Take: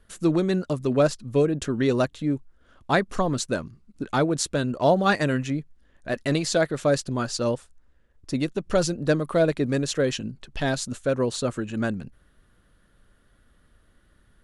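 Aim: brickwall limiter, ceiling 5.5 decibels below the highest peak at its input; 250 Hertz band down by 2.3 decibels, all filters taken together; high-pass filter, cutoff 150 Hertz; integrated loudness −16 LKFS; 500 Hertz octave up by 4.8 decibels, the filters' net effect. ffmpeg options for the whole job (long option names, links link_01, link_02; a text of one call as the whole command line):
ffmpeg -i in.wav -af "highpass=150,equalizer=frequency=250:width_type=o:gain=-5,equalizer=frequency=500:width_type=o:gain=7,volume=8dB,alimiter=limit=-2.5dB:level=0:latency=1" out.wav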